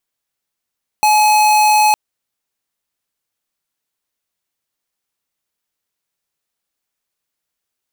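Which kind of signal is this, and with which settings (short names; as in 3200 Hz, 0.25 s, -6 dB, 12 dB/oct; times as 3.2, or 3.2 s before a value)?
tone square 849 Hz -11 dBFS 0.91 s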